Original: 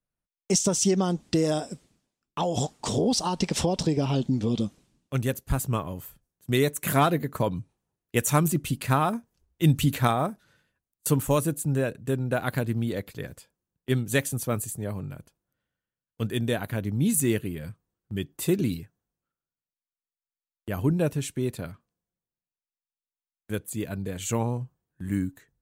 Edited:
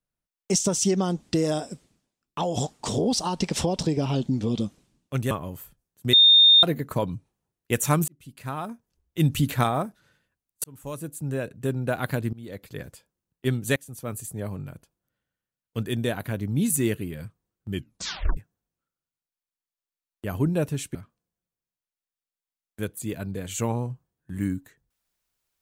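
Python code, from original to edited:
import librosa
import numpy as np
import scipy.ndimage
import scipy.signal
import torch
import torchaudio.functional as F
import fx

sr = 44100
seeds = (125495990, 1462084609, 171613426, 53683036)

y = fx.edit(x, sr, fx.cut(start_s=5.31, length_s=0.44),
    fx.bleep(start_s=6.57, length_s=0.5, hz=3650.0, db=-11.0),
    fx.fade_in_span(start_s=8.52, length_s=1.34),
    fx.fade_in_span(start_s=11.08, length_s=1.05),
    fx.fade_in_from(start_s=12.77, length_s=0.48, floor_db=-23.5),
    fx.fade_in_from(start_s=14.2, length_s=0.66, floor_db=-22.0),
    fx.tape_stop(start_s=18.18, length_s=0.63),
    fx.cut(start_s=21.39, length_s=0.27), tone=tone)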